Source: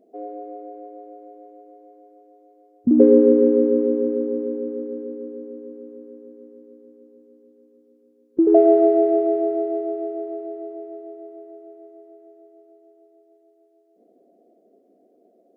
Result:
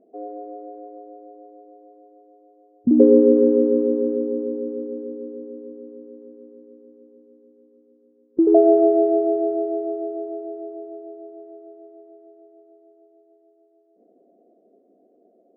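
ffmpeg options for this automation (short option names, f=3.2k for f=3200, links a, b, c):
-af "asetnsamples=n=441:p=0,asendcmd='0.98 lowpass f 1100;3.37 lowpass f 1300;4.15 lowpass f 1100;6.22 lowpass f 1300;8.49 lowpass f 1100;11.4 lowpass f 1300',lowpass=1.3k"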